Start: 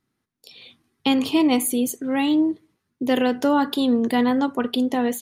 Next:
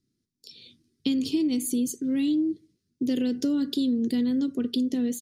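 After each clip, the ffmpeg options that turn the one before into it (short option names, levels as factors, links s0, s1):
-af "firequalizer=gain_entry='entry(340,0);entry(840,-29);entry(1400,-17);entry(4900,3);entry(12000,-8)':delay=0.05:min_phase=1,acompressor=threshold=0.0794:ratio=6"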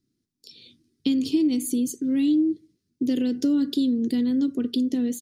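-af "equalizer=f=300:t=o:w=0.5:g=4"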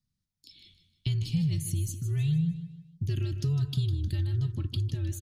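-af "aecho=1:1:154|308|462|616:0.266|0.104|0.0405|0.0158,afreqshift=-150,volume=0.501"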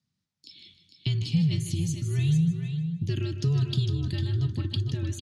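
-filter_complex "[0:a]highpass=130,lowpass=6600,asplit=2[s0][s1];[s1]aecho=0:1:451:0.398[s2];[s0][s2]amix=inputs=2:normalize=0,volume=1.88"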